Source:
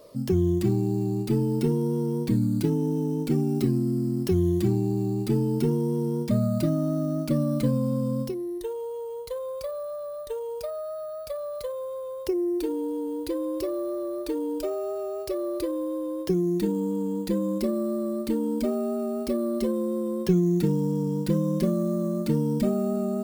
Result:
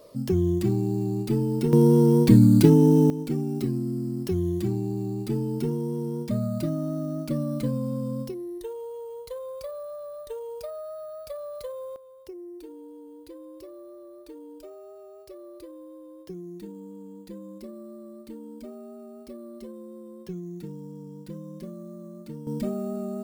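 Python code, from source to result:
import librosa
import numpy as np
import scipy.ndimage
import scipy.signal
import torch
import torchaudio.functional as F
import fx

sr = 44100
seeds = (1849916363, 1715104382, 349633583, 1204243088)

y = fx.gain(x, sr, db=fx.steps((0.0, -0.5), (1.73, 9.0), (3.1, -3.5), (11.96, -15.0), (22.47, -5.0)))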